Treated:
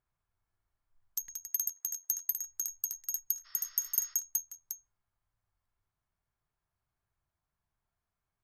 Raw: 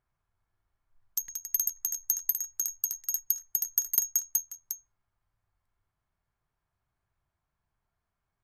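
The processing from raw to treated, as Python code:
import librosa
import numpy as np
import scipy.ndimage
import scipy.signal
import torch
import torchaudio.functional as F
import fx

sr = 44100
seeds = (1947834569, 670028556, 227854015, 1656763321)

y = fx.steep_highpass(x, sr, hz=320.0, slope=48, at=(1.47, 2.31))
y = fx.spec_repair(y, sr, seeds[0], start_s=3.48, length_s=0.64, low_hz=600.0, high_hz=5500.0, source='after')
y = y * librosa.db_to_amplitude(-4.5)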